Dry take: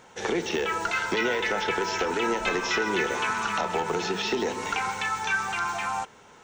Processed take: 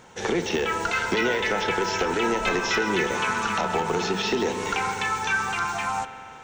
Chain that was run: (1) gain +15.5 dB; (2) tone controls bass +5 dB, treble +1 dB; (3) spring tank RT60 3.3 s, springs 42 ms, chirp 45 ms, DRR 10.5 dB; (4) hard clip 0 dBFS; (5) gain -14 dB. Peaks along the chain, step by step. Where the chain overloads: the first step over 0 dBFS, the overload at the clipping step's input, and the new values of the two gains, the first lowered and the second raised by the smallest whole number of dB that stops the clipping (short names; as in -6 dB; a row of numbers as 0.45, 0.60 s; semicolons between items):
+2.5, +3.0, +3.5, 0.0, -14.0 dBFS; step 1, 3.5 dB; step 1 +11.5 dB, step 5 -10 dB